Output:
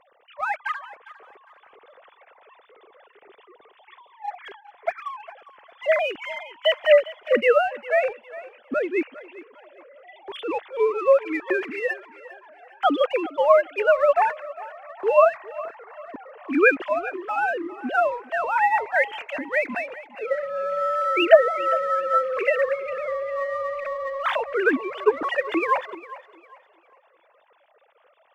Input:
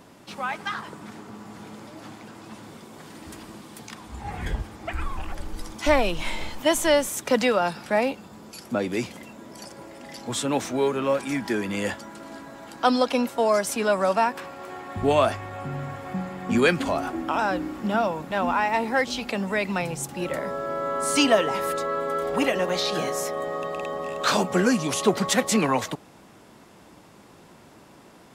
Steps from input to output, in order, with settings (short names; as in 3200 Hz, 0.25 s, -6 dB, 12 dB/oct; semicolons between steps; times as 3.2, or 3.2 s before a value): sine-wave speech; dynamic EQ 1900 Hz, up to +4 dB, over -37 dBFS, Q 1.7; in parallel at -9.5 dB: crossover distortion -36 dBFS; on the sum: thinning echo 0.404 s, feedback 32%, high-pass 250 Hz, level -17 dB; gain -1 dB